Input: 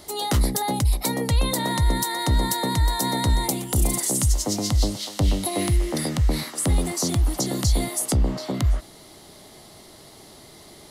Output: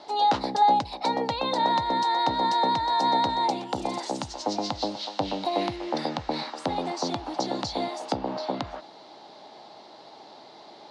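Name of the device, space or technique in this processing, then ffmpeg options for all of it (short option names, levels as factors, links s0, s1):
phone earpiece: -af "highpass=360,equalizer=f=390:t=q:w=4:g=-5,equalizer=f=850:t=q:w=4:g=8,equalizer=f=1200:t=q:w=4:g=-4,equalizer=f=2000:t=q:w=4:g=-9,equalizer=f=3100:t=q:w=4:g=-6,lowpass=f=4200:w=0.5412,lowpass=f=4200:w=1.3066,volume=1.33"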